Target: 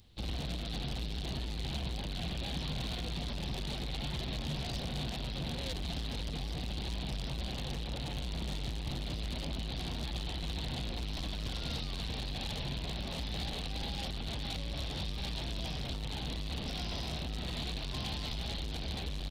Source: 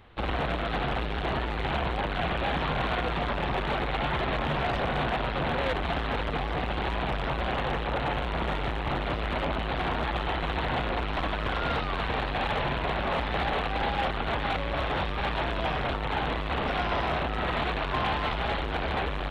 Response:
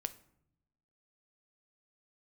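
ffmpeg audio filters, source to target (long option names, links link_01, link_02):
-af "firequalizer=gain_entry='entry(190,0);entry(400,-9);entry(1300,-18);entry(4700,14)':delay=0.05:min_phase=1,volume=-5dB"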